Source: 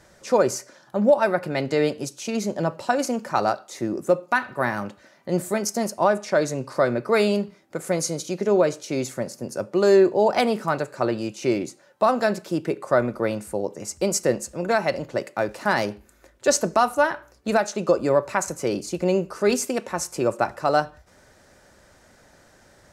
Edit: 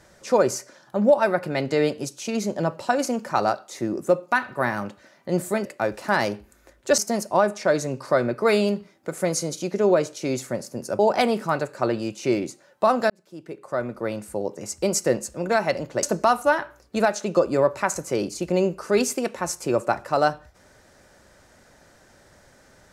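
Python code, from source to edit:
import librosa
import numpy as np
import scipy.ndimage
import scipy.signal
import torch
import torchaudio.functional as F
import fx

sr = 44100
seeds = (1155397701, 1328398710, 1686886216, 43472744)

y = fx.edit(x, sr, fx.cut(start_s=9.66, length_s=0.52),
    fx.fade_in_span(start_s=12.29, length_s=1.48),
    fx.move(start_s=15.22, length_s=1.33, to_s=5.65), tone=tone)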